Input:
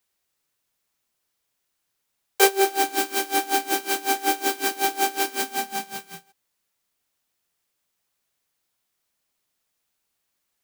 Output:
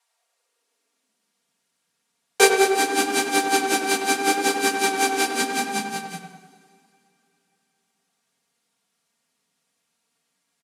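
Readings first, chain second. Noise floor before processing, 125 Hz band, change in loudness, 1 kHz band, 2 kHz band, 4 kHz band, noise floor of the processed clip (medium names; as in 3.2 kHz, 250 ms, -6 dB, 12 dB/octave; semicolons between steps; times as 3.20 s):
-77 dBFS, no reading, +2.5 dB, +2.0 dB, +4.5 dB, +3.0 dB, -75 dBFS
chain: low-pass 11 kHz 24 dB/octave; comb 4.3 ms, depth 74%; on a send: tape echo 98 ms, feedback 62%, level -4.5 dB, low-pass 1.7 kHz; on the sum: plate-style reverb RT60 3.3 s, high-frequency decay 0.9×, DRR 19 dB; high-pass sweep 800 Hz -> 130 Hz, 0.06–1.64 s; in parallel at -9.5 dB: saturation -17.5 dBFS, distortion -11 dB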